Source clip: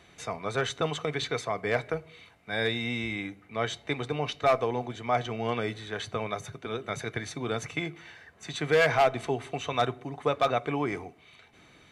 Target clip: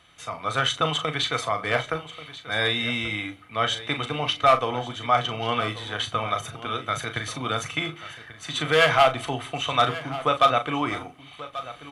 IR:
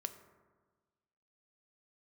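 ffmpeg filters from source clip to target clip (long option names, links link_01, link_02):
-filter_complex "[0:a]asplit=2[link_01][link_02];[link_02]adelay=38,volume=-9dB[link_03];[link_01][link_03]amix=inputs=2:normalize=0,aecho=1:1:1136:0.168,dynaudnorm=framelen=250:gausssize=3:maxgain=6.5dB,equalizer=frequency=200:width_type=o:width=0.33:gain=-7,equalizer=frequency=400:width_type=o:width=0.33:gain=-10,equalizer=frequency=1250:width_type=o:width=0.33:gain=8,equalizer=frequency=3150:width_type=o:width=0.33:gain=10,equalizer=frequency=10000:width_type=o:width=0.33:gain=8,volume=-3dB"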